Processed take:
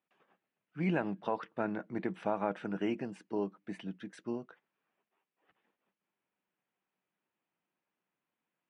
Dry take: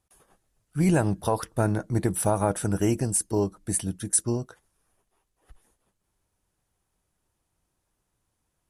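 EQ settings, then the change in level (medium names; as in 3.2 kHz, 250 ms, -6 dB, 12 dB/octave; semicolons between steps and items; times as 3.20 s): Chebyshev high-pass 190 Hz, order 3; four-pole ladder low-pass 3.1 kHz, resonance 40%; 0.0 dB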